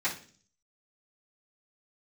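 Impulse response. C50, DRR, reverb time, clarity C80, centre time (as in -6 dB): 9.5 dB, -15.0 dB, 0.45 s, 15.5 dB, 18 ms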